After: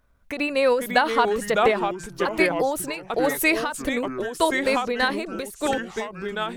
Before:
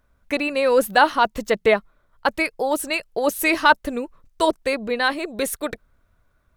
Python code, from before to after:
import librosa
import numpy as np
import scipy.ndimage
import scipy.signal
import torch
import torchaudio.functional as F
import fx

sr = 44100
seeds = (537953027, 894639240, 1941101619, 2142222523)

y = fx.echo_pitch(x, sr, ms=422, semitones=-3, count=3, db_per_echo=-6.0)
y = fx.end_taper(y, sr, db_per_s=110.0)